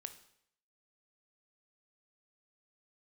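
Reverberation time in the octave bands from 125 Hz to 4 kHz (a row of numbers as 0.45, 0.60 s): 0.70, 0.65, 0.70, 0.70, 0.70, 0.65 s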